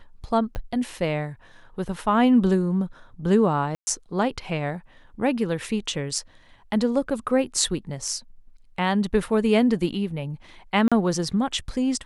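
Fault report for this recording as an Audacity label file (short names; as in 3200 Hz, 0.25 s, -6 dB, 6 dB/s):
0.550000	0.550000	pop -20 dBFS
3.750000	3.870000	gap 0.12 s
10.880000	10.920000	gap 36 ms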